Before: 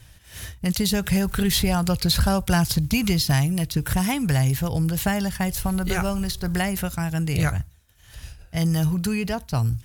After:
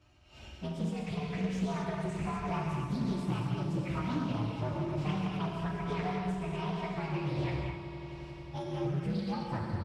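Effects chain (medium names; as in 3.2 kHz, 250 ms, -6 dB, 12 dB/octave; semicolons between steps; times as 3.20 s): frequency axis rescaled in octaves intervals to 124%; high-pass 73 Hz 12 dB/octave; bass shelf 120 Hz -10 dB; hum notches 50/100/150 Hz; comb 3.2 ms, depth 41%; compression, threshold -33 dBFS, peak gain reduction 11 dB; tape spacing loss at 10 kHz 27 dB; on a send: echo with a slow build-up 90 ms, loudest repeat 5, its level -17.5 dB; on the sum: gated-style reverb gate 280 ms flat, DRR -1.5 dB; loudspeaker Doppler distortion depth 0.27 ms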